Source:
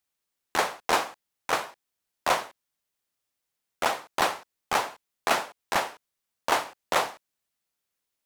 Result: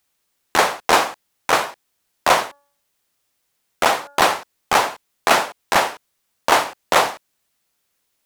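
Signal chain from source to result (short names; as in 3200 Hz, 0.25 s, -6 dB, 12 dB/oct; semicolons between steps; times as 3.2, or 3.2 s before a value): in parallel at -1 dB: limiter -20.5 dBFS, peak gain reduction 10.5 dB; 2.45–4.35 on the sum: de-hum 284.6 Hz, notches 6; gain +6.5 dB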